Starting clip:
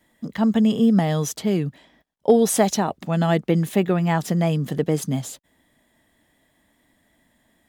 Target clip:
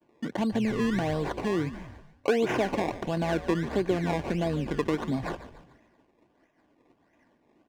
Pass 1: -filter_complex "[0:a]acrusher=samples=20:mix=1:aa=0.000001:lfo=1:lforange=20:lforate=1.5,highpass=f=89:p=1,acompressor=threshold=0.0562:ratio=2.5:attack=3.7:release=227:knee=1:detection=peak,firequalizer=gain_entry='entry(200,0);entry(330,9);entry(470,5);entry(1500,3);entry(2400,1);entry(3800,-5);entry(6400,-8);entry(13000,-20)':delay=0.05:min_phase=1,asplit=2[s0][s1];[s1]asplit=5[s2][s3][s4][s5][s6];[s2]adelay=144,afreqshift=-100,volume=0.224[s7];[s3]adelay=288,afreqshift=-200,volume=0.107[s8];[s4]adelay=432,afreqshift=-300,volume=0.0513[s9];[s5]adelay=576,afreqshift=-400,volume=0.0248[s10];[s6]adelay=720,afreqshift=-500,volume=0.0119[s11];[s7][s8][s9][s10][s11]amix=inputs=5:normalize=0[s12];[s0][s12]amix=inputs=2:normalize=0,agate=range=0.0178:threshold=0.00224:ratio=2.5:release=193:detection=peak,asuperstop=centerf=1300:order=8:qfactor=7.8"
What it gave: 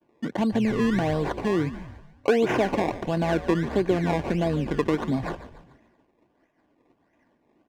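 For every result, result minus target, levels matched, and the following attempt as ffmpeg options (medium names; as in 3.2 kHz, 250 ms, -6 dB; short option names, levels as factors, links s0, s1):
compression: peak gain reduction -4 dB; 8 kHz band -3.0 dB
-filter_complex "[0:a]acrusher=samples=20:mix=1:aa=0.000001:lfo=1:lforange=20:lforate=1.5,highpass=f=89:p=1,acompressor=threshold=0.0282:ratio=2.5:attack=3.7:release=227:knee=1:detection=peak,firequalizer=gain_entry='entry(200,0);entry(330,9);entry(470,5);entry(1500,3);entry(2400,1);entry(3800,-5);entry(6400,-8);entry(13000,-20)':delay=0.05:min_phase=1,asplit=2[s0][s1];[s1]asplit=5[s2][s3][s4][s5][s6];[s2]adelay=144,afreqshift=-100,volume=0.224[s7];[s3]adelay=288,afreqshift=-200,volume=0.107[s8];[s4]adelay=432,afreqshift=-300,volume=0.0513[s9];[s5]adelay=576,afreqshift=-400,volume=0.0248[s10];[s6]adelay=720,afreqshift=-500,volume=0.0119[s11];[s7][s8][s9][s10][s11]amix=inputs=5:normalize=0[s12];[s0][s12]amix=inputs=2:normalize=0,agate=range=0.0178:threshold=0.00224:ratio=2.5:release=193:detection=peak,asuperstop=centerf=1300:order=8:qfactor=7.8"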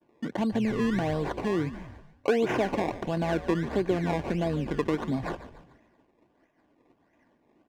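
8 kHz band -3.0 dB
-filter_complex "[0:a]acrusher=samples=20:mix=1:aa=0.000001:lfo=1:lforange=20:lforate=1.5,highpass=f=89:p=1,highshelf=f=2900:g=3.5,acompressor=threshold=0.0282:ratio=2.5:attack=3.7:release=227:knee=1:detection=peak,firequalizer=gain_entry='entry(200,0);entry(330,9);entry(470,5);entry(1500,3);entry(2400,1);entry(3800,-5);entry(6400,-8);entry(13000,-20)':delay=0.05:min_phase=1,asplit=2[s0][s1];[s1]asplit=5[s2][s3][s4][s5][s6];[s2]adelay=144,afreqshift=-100,volume=0.224[s7];[s3]adelay=288,afreqshift=-200,volume=0.107[s8];[s4]adelay=432,afreqshift=-300,volume=0.0513[s9];[s5]adelay=576,afreqshift=-400,volume=0.0248[s10];[s6]adelay=720,afreqshift=-500,volume=0.0119[s11];[s7][s8][s9][s10][s11]amix=inputs=5:normalize=0[s12];[s0][s12]amix=inputs=2:normalize=0,agate=range=0.0178:threshold=0.00224:ratio=2.5:release=193:detection=peak,asuperstop=centerf=1300:order=8:qfactor=7.8"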